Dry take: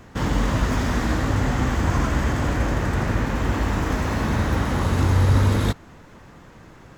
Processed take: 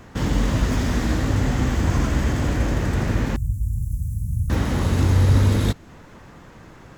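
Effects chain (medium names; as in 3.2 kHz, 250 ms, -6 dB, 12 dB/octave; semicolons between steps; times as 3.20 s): 3.36–4.50 s: elliptic band-stop 130–9300 Hz, stop band 50 dB; dynamic bell 1.1 kHz, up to -6 dB, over -43 dBFS, Q 0.76; trim +1.5 dB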